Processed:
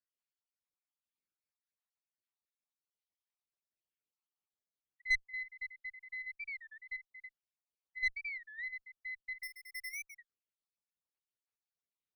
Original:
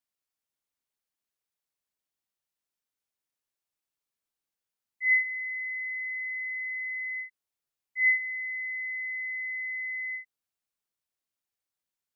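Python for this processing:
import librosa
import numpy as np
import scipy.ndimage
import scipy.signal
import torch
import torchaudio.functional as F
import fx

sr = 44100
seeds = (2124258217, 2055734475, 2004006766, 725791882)

y = fx.spec_dropout(x, sr, seeds[0], share_pct=64)
y = fx.tube_stage(y, sr, drive_db=21.0, bias=0.55)
y = fx.air_absorb(y, sr, metres=69.0)
y = fx.resample_bad(y, sr, factor=6, down='filtered', up='hold', at=(9.43, 10.2))
y = fx.record_warp(y, sr, rpm=33.33, depth_cents=250.0)
y = y * 10.0 ** (-1.5 / 20.0)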